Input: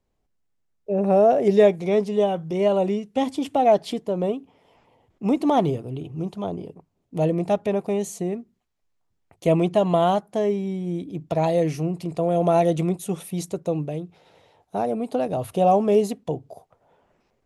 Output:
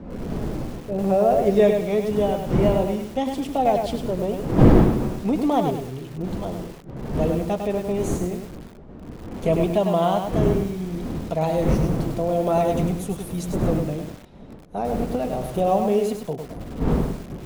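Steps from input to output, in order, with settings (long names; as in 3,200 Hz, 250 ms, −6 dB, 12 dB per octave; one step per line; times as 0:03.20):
wind on the microphone 280 Hz −25 dBFS
flanger 0.54 Hz, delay 3.8 ms, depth 2.5 ms, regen −64%
feedback echo at a low word length 102 ms, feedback 35%, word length 7 bits, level −5 dB
level +2 dB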